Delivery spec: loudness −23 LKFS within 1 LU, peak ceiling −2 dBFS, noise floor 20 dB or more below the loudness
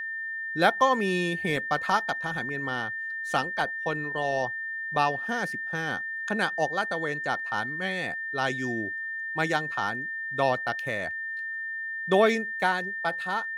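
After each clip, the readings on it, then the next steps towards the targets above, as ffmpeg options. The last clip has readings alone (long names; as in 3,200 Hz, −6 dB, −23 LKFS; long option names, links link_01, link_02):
interfering tone 1,800 Hz; level of the tone −31 dBFS; integrated loudness −28.0 LKFS; sample peak −8.0 dBFS; target loudness −23.0 LKFS
→ -af "bandreject=frequency=1800:width=30"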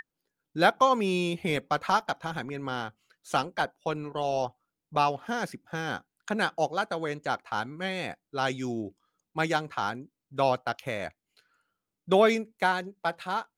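interfering tone none found; integrated loudness −29.0 LKFS; sample peak −8.5 dBFS; target loudness −23.0 LKFS
→ -af "volume=6dB"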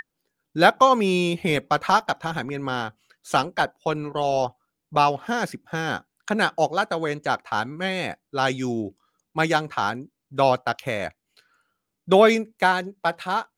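integrated loudness −23.0 LKFS; sample peak −2.5 dBFS; background noise floor −81 dBFS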